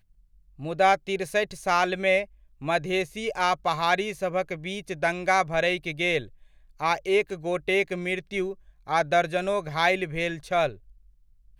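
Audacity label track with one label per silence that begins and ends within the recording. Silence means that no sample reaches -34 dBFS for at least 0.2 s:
2.240000	2.620000	silence
6.250000	6.810000	silence
8.530000	8.880000	silence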